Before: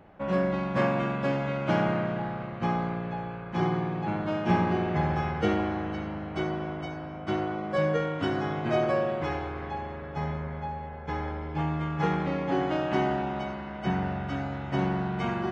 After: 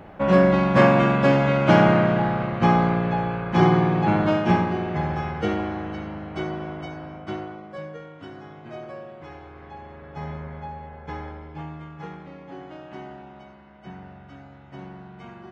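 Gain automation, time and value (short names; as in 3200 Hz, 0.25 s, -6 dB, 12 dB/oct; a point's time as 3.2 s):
4.26 s +10 dB
4.71 s +1 dB
7.12 s +1 dB
7.92 s -12 dB
9.14 s -12 dB
10.34 s -1 dB
11.08 s -1 dB
12.23 s -12.5 dB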